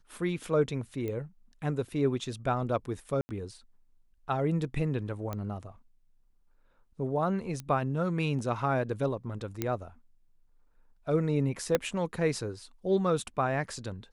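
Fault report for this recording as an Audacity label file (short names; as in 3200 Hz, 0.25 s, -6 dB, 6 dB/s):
1.080000	1.080000	pop -24 dBFS
3.210000	3.290000	gap 80 ms
5.330000	5.330000	pop -21 dBFS
7.600000	7.600000	pop -23 dBFS
9.620000	9.620000	pop -15 dBFS
11.750000	11.750000	pop -11 dBFS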